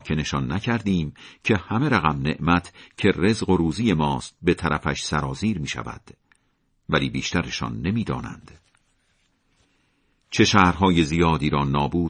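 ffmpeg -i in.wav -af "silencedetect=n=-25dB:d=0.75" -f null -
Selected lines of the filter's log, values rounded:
silence_start: 5.91
silence_end: 6.89 | silence_duration: 0.98
silence_start: 8.30
silence_end: 10.34 | silence_duration: 2.03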